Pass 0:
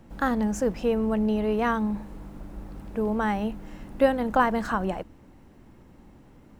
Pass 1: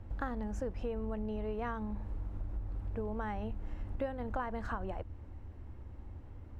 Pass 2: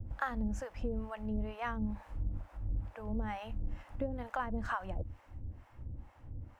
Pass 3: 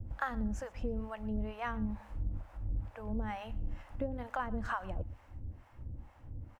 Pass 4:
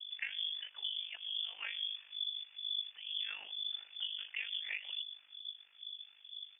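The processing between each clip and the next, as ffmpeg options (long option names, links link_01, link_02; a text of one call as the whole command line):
ffmpeg -i in.wav -af "lowpass=frequency=2200:poles=1,lowshelf=frequency=120:width_type=q:width=3:gain=9,acompressor=threshold=-32dB:ratio=4,volume=-3dB" out.wav
ffmpeg -i in.wav -filter_complex "[0:a]equalizer=frequency=125:width_type=o:width=0.33:gain=6,equalizer=frequency=400:width_type=o:width=0.33:gain=-9,equalizer=frequency=4000:width_type=o:width=0.33:gain=-4,acrossover=split=560[link_01][link_02];[link_01]aeval=exprs='val(0)*(1-1/2+1/2*cos(2*PI*2.2*n/s))':channel_layout=same[link_03];[link_02]aeval=exprs='val(0)*(1-1/2-1/2*cos(2*PI*2.2*n/s))':channel_layout=same[link_04];[link_03][link_04]amix=inputs=2:normalize=0,adynamicequalizer=threshold=0.00178:dfrequency=1700:dqfactor=0.7:tfrequency=1700:tqfactor=0.7:attack=5:release=100:ratio=0.375:range=2.5:mode=boostabove:tftype=highshelf,volume=5dB" out.wav
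ffmpeg -i in.wav -af "aecho=1:1:118|236:0.0794|0.0191" out.wav
ffmpeg -i in.wav -af "lowpass=frequency=3000:width_type=q:width=0.5098,lowpass=frequency=3000:width_type=q:width=0.6013,lowpass=frequency=3000:width_type=q:width=0.9,lowpass=frequency=3000:width_type=q:width=2.563,afreqshift=-3500,aeval=exprs='val(0)*sin(2*PI*25*n/s)':channel_layout=same,volume=-2dB" out.wav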